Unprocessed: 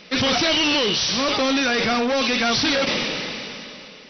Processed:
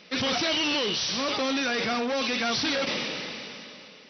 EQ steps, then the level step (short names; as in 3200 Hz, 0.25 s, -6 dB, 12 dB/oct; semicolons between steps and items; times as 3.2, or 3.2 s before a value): HPF 100 Hz 6 dB/oct; -6.5 dB